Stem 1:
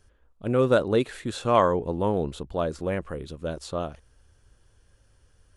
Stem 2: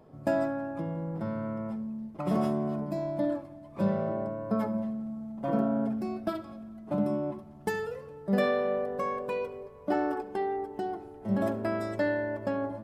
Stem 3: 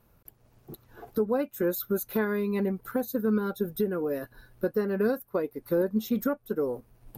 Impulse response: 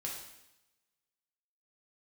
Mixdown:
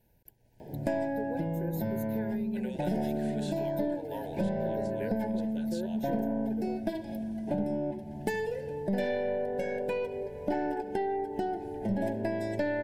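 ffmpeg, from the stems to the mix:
-filter_complex "[0:a]highpass=870,acompressor=threshold=-36dB:ratio=2.5,adelay=2100,volume=-6dB[link_01];[1:a]aeval=exprs='0.188*(cos(1*acos(clip(val(0)/0.188,-1,1)))-cos(1*PI/2))+0.0596*(cos(2*acos(clip(val(0)/0.188,-1,1)))-cos(2*PI/2))':channel_layout=same,adelay=600,volume=3dB[link_02];[2:a]volume=-12dB[link_03];[link_01][link_02][link_03]amix=inputs=3:normalize=0,acontrast=90,asuperstop=centerf=1200:order=20:qfactor=2.4,acompressor=threshold=-32dB:ratio=3"

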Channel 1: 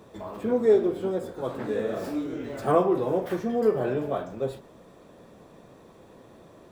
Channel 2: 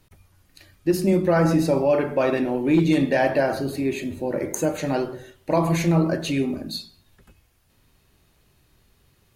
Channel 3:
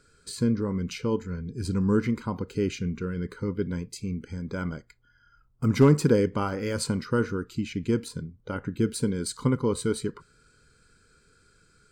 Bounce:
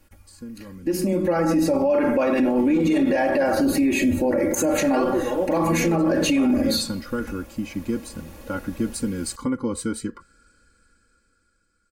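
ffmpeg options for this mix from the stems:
ffmpeg -i stem1.wav -i stem2.wav -i stem3.wav -filter_complex "[0:a]adelay=2250,volume=-11.5dB,asplit=3[link_01][link_02][link_03];[link_01]atrim=end=3.62,asetpts=PTS-STARTPTS,afade=type=out:start_time=3.616:duration=0.004:curve=hsin[link_04];[link_02]atrim=start=3.62:end=4.7,asetpts=PTS-STARTPTS,volume=0[link_05];[link_03]atrim=start=4.7,asetpts=PTS-STARTPTS,afade=type=in:duration=0.004:curve=hsin[link_06];[link_04][link_05][link_06]concat=n=3:v=0:a=1[link_07];[1:a]volume=1dB[link_08];[2:a]acompressor=threshold=-24dB:ratio=3,volume=-12.5dB[link_09];[link_08][link_09]amix=inputs=2:normalize=0,equalizer=frequency=3800:width=2.6:gain=-7,alimiter=limit=-18.5dB:level=0:latency=1:release=129,volume=0dB[link_10];[link_07][link_10]amix=inputs=2:normalize=0,aecho=1:1:3.6:0.81,dynaudnorm=framelen=290:gausssize=11:maxgain=14.5dB,alimiter=limit=-13dB:level=0:latency=1:release=41" out.wav

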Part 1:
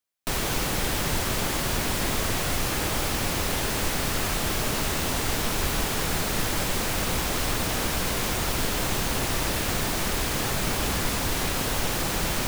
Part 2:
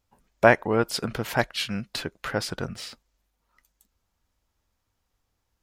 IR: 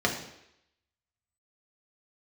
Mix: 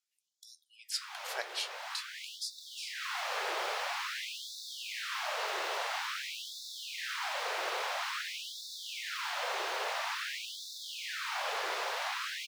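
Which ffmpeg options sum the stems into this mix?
-filter_complex "[0:a]acrossover=split=440 4800:gain=0.0708 1 0.0891[link_01][link_02][link_03];[link_01][link_02][link_03]amix=inputs=3:normalize=0,equalizer=frequency=2900:width_type=o:width=1.7:gain=-3,adelay=650,volume=-2dB[link_04];[1:a]equalizer=frequency=6600:width=0.32:gain=12.5,flanger=delay=8.1:depth=7.1:regen=-74:speed=0.5:shape=triangular,volume=-12.5dB,asplit=2[link_05][link_06];[link_06]apad=whole_len=578693[link_07];[link_04][link_07]sidechaincompress=threshold=-41dB:ratio=8:attack=12:release=747[link_08];[link_08][link_05]amix=inputs=2:normalize=0,afftfilt=real='re*gte(b*sr/1024,330*pow(3500/330,0.5+0.5*sin(2*PI*0.49*pts/sr)))':imag='im*gte(b*sr/1024,330*pow(3500/330,0.5+0.5*sin(2*PI*0.49*pts/sr)))':win_size=1024:overlap=0.75"

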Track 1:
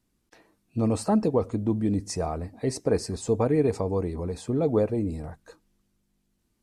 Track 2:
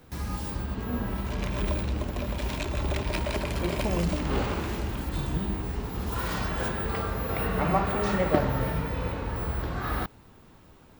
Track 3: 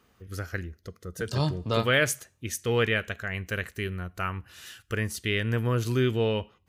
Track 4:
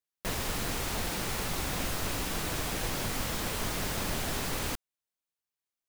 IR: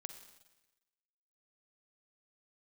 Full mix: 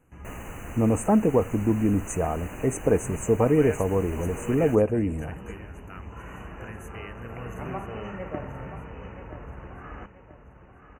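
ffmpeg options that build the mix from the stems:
-filter_complex "[0:a]volume=2.5dB,asplit=2[link_01][link_02];[1:a]lowpass=frequency=5200:width=0.5412,lowpass=frequency=5200:width=1.3066,volume=-10.5dB,asplit=2[link_03][link_04];[link_04]volume=-10.5dB[link_05];[2:a]adelay=1700,volume=-14.5dB,asplit=2[link_06][link_07];[link_07]volume=-11.5dB[link_08];[3:a]highshelf=frequency=4400:gain=-8.5,volume=-5.5dB[link_09];[link_02]apad=whole_len=484815[link_10];[link_03][link_10]sidechaincompress=threshold=-25dB:ratio=8:attack=16:release=886[link_11];[link_05][link_08]amix=inputs=2:normalize=0,aecho=0:1:981|1962|2943|3924|4905:1|0.39|0.152|0.0593|0.0231[link_12];[link_01][link_11][link_06][link_09][link_12]amix=inputs=5:normalize=0,afftfilt=real='re*(1-between(b*sr/4096,3000,6000))':imag='im*(1-between(b*sr/4096,3000,6000))':win_size=4096:overlap=0.75"

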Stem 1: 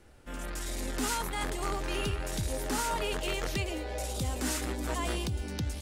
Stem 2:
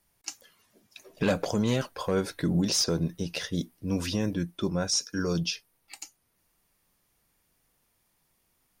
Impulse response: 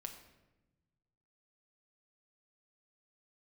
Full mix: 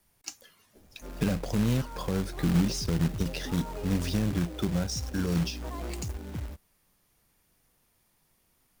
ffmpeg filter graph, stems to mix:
-filter_complex "[0:a]lowpass=1200,adelay=750,volume=-4.5dB[link_01];[1:a]volume=1.5dB[link_02];[link_01][link_02]amix=inputs=2:normalize=0,lowshelf=frequency=330:gain=2.5,acrossover=split=220[link_03][link_04];[link_04]acompressor=threshold=-35dB:ratio=4[link_05];[link_03][link_05]amix=inputs=2:normalize=0,acrusher=bits=3:mode=log:mix=0:aa=0.000001"

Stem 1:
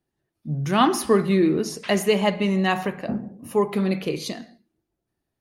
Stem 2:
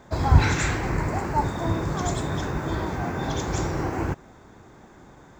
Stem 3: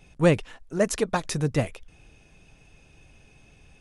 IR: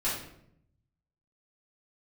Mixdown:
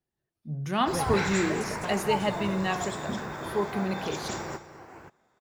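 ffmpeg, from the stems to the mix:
-filter_complex "[0:a]volume=-7dB,asplit=2[link_01][link_02];[1:a]highpass=frequency=410:poles=1,bandreject=frequency=6300:width=14,adelay=750,volume=-3.5dB,asplit=2[link_03][link_04];[link_04]volume=-12dB[link_05];[2:a]adelay=700,volume=-15.5dB,asplit=2[link_06][link_07];[link_07]volume=-4dB[link_08];[link_02]apad=whole_len=270983[link_09];[link_03][link_09]sidechaingate=range=-33dB:threshold=-56dB:ratio=16:detection=peak[link_10];[link_05][link_08]amix=inputs=2:normalize=0,aecho=0:1:206:1[link_11];[link_01][link_10][link_06][link_11]amix=inputs=4:normalize=0,equalizer=frequency=290:width_type=o:width=0.37:gain=-5.5"

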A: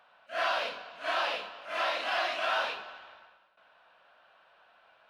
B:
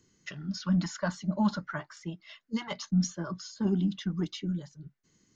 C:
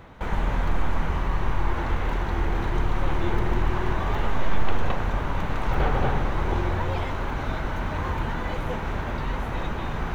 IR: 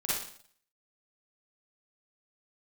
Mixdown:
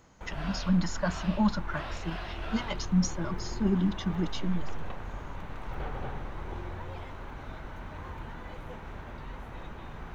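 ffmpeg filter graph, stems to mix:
-filter_complex "[0:a]volume=-12.5dB[link_01];[1:a]volume=1dB[link_02];[2:a]volume=-13.5dB[link_03];[link_01][link_02][link_03]amix=inputs=3:normalize=0"

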